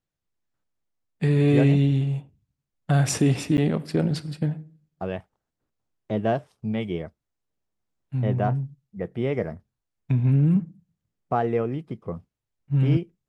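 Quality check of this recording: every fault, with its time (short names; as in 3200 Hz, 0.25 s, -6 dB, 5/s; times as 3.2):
3.57–3.58 gap 9.9 ms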